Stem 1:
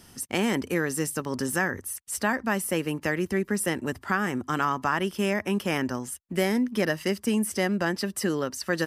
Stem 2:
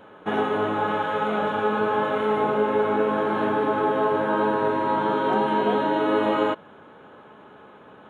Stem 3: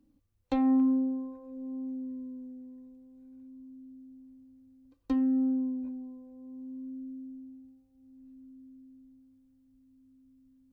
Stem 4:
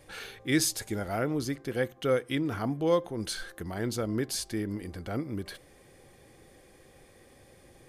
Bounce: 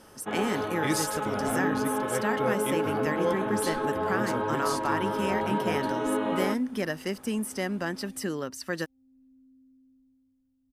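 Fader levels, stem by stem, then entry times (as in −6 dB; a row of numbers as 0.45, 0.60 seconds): −5.0, −7.5, −7.0, −3.5 decibels; 0.00, 0.00, 0.95, 0.35 seconds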